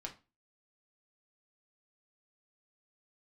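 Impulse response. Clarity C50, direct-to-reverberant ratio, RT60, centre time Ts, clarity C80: 13.5 dB, 0.0 dB, 0.30 s, 11 ms, 20.0 dB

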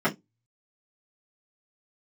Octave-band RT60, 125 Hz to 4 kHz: 0.25, 0.20, 0.20, 0.15, 0.15, 0.15 seconds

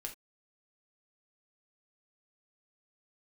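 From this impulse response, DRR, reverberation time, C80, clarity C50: 2.0 dB, non-exponential decay, 20.5 dB, 11.5 dB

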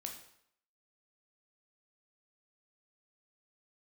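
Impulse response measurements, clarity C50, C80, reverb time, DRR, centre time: 7.0 dB, 10.0 dB, 0.70 s, 2.0 dB, 24 ms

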